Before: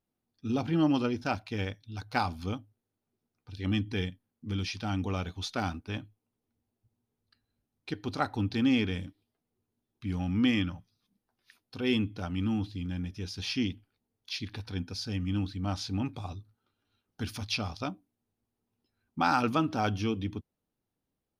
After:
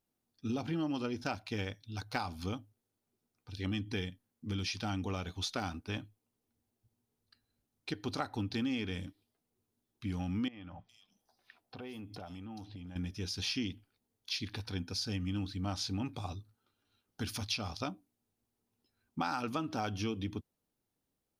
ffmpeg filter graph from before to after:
-filter_complex "[0:a]asettb=1/sr,asplit=3[s0][s1][s2];[s0]atrim=end=10.484[s3];[s1]atrim=start=10.48:end=12.96,asetpts=PTS-STARTPTS,afade=t=in:d=0.004:c=qsin,afade=t=out:st=2.476:d=0.004:c=qsin,equalizer=f=710:w=1.6:g=11,acompressor=threshold=0.00891:ratio=10:attack=3.2:release=140:knee=1:detection=peak,acrossover=split=3900[s4][s5];[s5]adelay=410[s6];[s4][s6]amix=inputs=2:normalize=0,atrim=end_sample=109368[s7];[s2]atrim=start=12.956[s8];[s3][s7]acrossfade=d=0.004:c1=hsin:c2=qsin[s9];[s9][s8]acrossfade=d=0.004:c1=qsin:c2=hsin,bass=f=250:g=-2,treble=f=4000:g=4,acompressor=threshold=0.0251:ratio=6"

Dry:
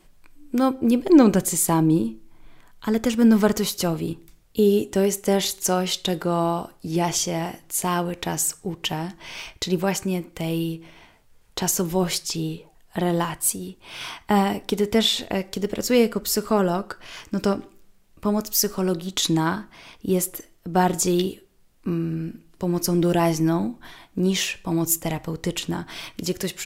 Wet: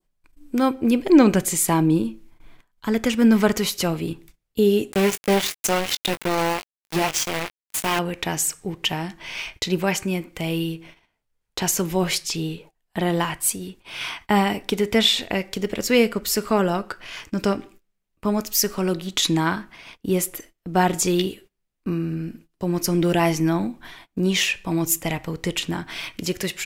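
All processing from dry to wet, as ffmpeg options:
-filter_complex "[0:a]asettb=1/sr,asplit=3[s0][s1][s2];[s0]atrim=end=4.924[s3];[s1]atrim=start=4.92:end=7.99,asetpts=PTS-STARTPTS,afade=t=in:d=0.004:c=qsin,afade=t=out:st=3.066:d=0.004:c=qsin,aeval=exprs='val(0)*gte(abs(val(0)),0.0794)':c=same,asplit=2[s4][s5];[s5]adelay=20,volume=0.266[s6];[s4][s6]amix=inputs=2:normalize=0,atrim=end_sample=135387[s7];[s2]atrim=start=7.986[s8];[s3][s7]acrossfade=d=0.004:c1=hsin:c2=qsin[s9];[s9][s8]acrossfade=d=0.004:c1=qsin:c2=hsin,agate=range=0.1:threshold=0.00562:ratio=16:detection=peak,adynamicequalizer=threshold=0.00631:dfrequency=2300:dqfactor=1.3:tfrequency=2300:tqfactor=1.3:attack=5:release=100:ratio=0.375:range=3.5:mode=boostabove:tftype=bell"

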